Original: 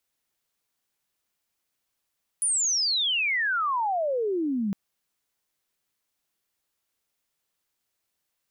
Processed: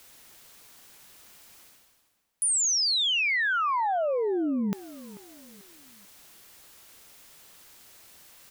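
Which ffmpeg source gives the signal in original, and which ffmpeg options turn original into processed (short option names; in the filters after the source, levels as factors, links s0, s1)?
-f lavfi -i "aevalsrc='pow(10,(-21.5-2.5*t/2.31)/20)*sin(2*PI*10000*2.31/log(190/10000)*(exp(log(190/10000)*t/2.31)-1))':d=2.31:s=44100"
-filter_complex "[0:a]areverse,acompressor=mode=upward:threshold=0.0282:ratio=2.5,areverse,asplit=2[s0][s1];[s1]adelay=440,lowpass=f=2000:p=1,volume=0.133,asplit=2[s2][s3];[s3]adelay=440,lowpass=f=2000:p=1,volume=0.4,asplit=2[s4][s5];[s5]adelay=440,lowpass=f=2000:p=1,volume=0.4[s6];[s0][s2][s4][s6]amix=inputs=4:normalize=0"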